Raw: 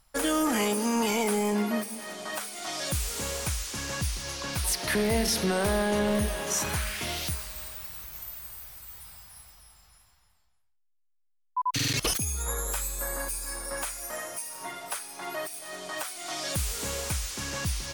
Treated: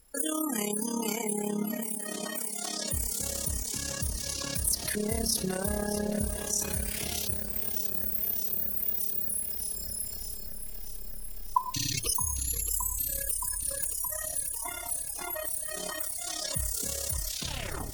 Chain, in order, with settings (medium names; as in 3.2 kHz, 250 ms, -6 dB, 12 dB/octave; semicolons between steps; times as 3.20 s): tape stop on the ending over 0.79 s; recorder AGC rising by 14 dB/s; pre-emphasis filter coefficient 0.8; spectral gate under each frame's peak -15 dB strong; tilt shelf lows +4.5 dB, about 670 Hz; in parallel at 0 dB: compression, threshold -45 dBFS, peak gain reduction 17.5 dB; on the sum: AM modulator 34 Hz, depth 55%; de-hum 115 Hz, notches 10; added noise pink -77 dBFS; bit-crushed delay 620 ms, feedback 80%, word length 10-bit, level -12 dB; trim +7 dB